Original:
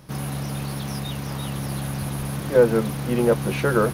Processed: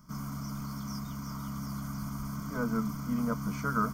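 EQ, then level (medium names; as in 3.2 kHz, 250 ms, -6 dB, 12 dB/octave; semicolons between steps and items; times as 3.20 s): static phaser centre 540 Hz, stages 8; static phaser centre 2.6 kHz, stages 8; -2.5 dB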